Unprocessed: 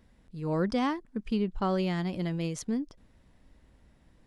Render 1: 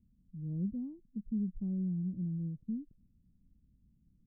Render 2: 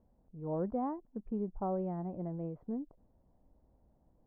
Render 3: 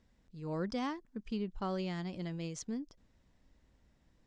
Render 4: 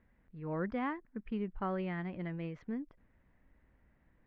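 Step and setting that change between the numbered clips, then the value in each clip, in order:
ladder low-pass, frequency: 240, 930, 7900, 2400 Hz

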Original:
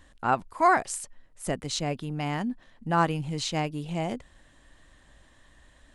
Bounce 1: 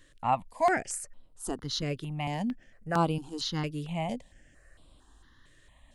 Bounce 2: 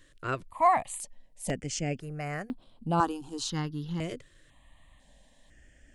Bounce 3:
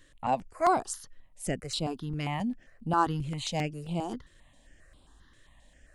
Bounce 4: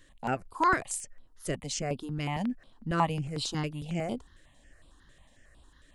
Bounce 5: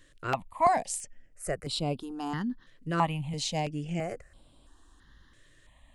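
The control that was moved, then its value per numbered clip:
step phaser, rate: 4.4, 2, 7.5, 11, 3 Hz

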